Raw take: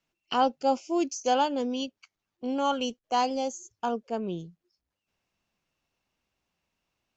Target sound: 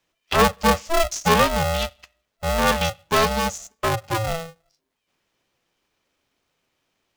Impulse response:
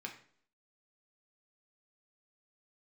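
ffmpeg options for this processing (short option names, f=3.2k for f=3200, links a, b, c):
-filter_complex "[0:a]asplit=2[a][b];[b]equalizer=f=3.5k:t=o:w=0.58:g=10.5[c];[1:a]atrim=start_sample=2205[d];[c][d]afir=irnorm=-1:irlink=0,volume=-15dB[e];[a][e]amix=inputs=2:normalize=0,aeval=exprs='val(0)*sgn(sin(2*PI*330*n/s))':c=same,volume=6.5dB"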